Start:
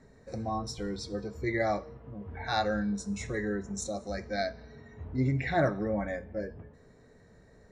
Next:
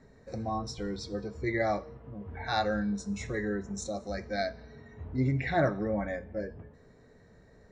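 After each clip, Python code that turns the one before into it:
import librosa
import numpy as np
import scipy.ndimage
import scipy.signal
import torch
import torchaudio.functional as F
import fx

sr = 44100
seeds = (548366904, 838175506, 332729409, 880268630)

y = scipy.signal.sosfilt(scipy.signal.butter(2, 6900.0, 'lowpass', fs=sr, output='sos'), x)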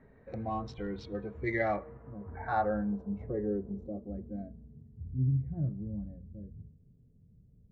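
y = fx.wiener(x, sr, points=9)
y = fx.filter_sweep_lowpass(y, sr, from_hz=3000.0, to_hz=150.0, start_s=1.44, end_s=4.95, q=1.4)
y = y * 10.0 ** (-2.0 / 20.0)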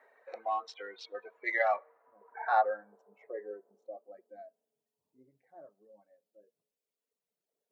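y = fx.dereverb_blind(x, sr, rt60_s=1.9)
y = scipy.signal.sosfilt(scipy.signal.butter(4, 590.0, 'highpass', fs=sr, output='sos'), y)
y = y * 10.0 ** (5.0 / 20.0)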